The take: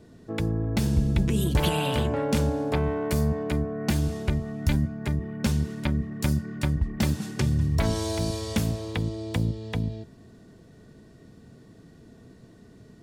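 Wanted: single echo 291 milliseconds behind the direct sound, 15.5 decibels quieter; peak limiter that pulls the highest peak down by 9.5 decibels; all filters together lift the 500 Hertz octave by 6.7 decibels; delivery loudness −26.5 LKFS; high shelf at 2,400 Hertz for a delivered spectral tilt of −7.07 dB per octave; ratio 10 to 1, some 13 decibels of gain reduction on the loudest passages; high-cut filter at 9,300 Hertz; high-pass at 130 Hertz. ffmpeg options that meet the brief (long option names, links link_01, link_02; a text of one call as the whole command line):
ffmpeg -i in.wav -af "highpass=130,lowpass=9300,equalizer=frequency=500:width_type=o:gain=8.5,highshelf=frequency=2400:gain=-5.5,acompressor=threshold=-32dB:ratio=10,alimiter=level_in=4dB:limit=-24dB:level=0:latency=1,volume=-4dB,aecho=1:1:291:0.168,volume=10.5dB" out.wav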